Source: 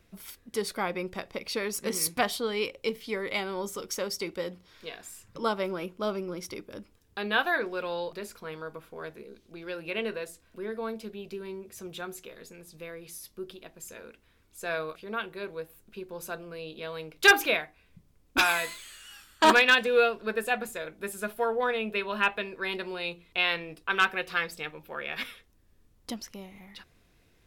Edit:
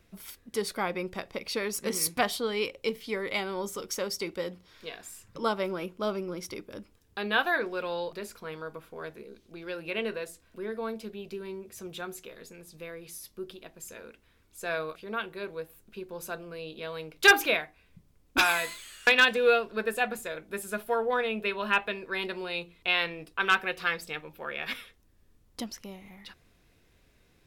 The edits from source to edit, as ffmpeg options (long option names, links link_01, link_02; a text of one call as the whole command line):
ffmpeg -i in.wav -filter_complex "[0:a]asplit=2[link_01][link_02];[link_01]atrim=end=19.072[link_03];[link_02]atrim=start=19.568[link_04];[link_03][link_04]acrossfade=duration=0.004:curve1=hsin:curve2=hsin" out.wav